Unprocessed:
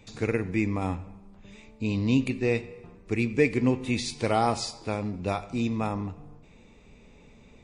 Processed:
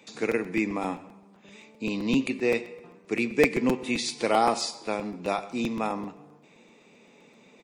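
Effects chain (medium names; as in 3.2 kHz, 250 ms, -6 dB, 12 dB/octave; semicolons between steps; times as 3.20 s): Bessel high-pass 260 Hz, order 6; on a send: delay 123 ms -21 dB; on the sum: crackling interface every 0.13 s, samples 256, repeat, from 0.31 s; trim +2.5 dB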